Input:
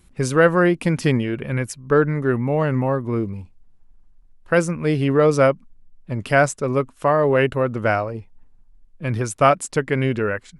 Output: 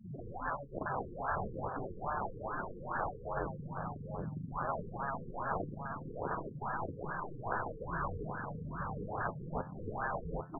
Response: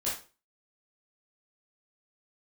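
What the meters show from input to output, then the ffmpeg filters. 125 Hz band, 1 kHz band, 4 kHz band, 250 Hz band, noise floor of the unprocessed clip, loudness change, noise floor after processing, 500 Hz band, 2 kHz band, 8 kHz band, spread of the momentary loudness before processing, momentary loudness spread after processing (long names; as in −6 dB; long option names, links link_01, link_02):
−19.5 dB, −12.5 dB, below −40 dB, −21.5 dB, −52 dBFS, −19.5 dB, −48 dBFS, −22.5 dB, −18.0 dB, below −40 dB, 10 LU, 4 LU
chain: -filter_complex "[0:a]aeval=exprs='val(0)+0.5*0.158*sgn(val(0))':channel_layout=same,aeval=exprs='val(0)*sin(2*PI*140*n/s)':channel_layout=same,aemphasis=mode=reproduction:type=75kf,agate=range=-24dB:threshold=-23dB:ratio=16:detection=peak,afftfilt=real='re*gte(hypot(re,im),0.0178)':imag='im*gte(hypot(re,im),0.0178)':win_size=1024:overlap=0.75,acrossover=split=150 6400:gain=0.224 1 0.0794[link_01][link_02][link_03];[link_01][link_02][link_03]amix=inputs=3:normalize=0,asplit=2[link_04][link_05];[link_05]acompressor=threshold=-26dB:ratio=16,volume=2.5dB[link_06];[link_04][link_06]amix=inputs=2:normalize=0,afftfilt=real='re*lt(hypot(re,im),0.178)':imag='im*lt(hypot(re,im),0.178)':win_size=1024:overlap=0.75,flanger=delay=9.2:depth=2.8:regen=75:speed=1.2:shape=triangular,asplit=2[link_07][link_08];[link_08]aecho=0:1:775|1550|2325:0.562|0.0844|0.0127[link_09];[link_07][link_09]amix=inputs=2:normalize=0,afftfilt=real='re*lt(b*sr/1024,480*pow(1800/480,0.5+0.5*sin(2*PI*2.4*pts/sr)))':imag='im*lt(b*sr/1024,480*pow(1800/480,0.5+0.5*sin(2*PI*2.4*pts/sr)))':win_size=1024:overlap=0.75,volume=1.5dB"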